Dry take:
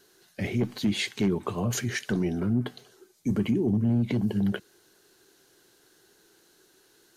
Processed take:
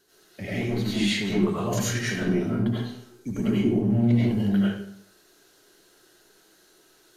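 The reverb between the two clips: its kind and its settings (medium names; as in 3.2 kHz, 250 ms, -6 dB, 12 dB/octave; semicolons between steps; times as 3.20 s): algorithmic reverb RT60 0.67 s, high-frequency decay 0.75×, pre-delay 55 ms, DRR -9 dB; trim -5.5 dB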